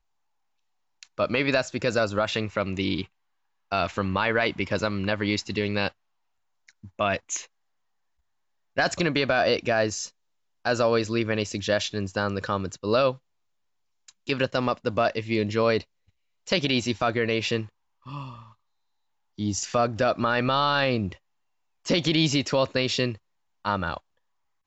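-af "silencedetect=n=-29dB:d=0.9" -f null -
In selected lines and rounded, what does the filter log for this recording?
silence_start: 0.00
silence_end: 1.03 | silence_duration: 1.03
silence_start: 5.88
silence_end: 6.99 | silence_duration: 1.11
silence_start: 7.40
silence_end: 8.78 | silence_duration: 1.38
silence_start: 13.12
silence_end: 14.29 | silence_duration: 1.17
silence_start: 18.24
silence_end: 19.39 | silence_duration: 1.15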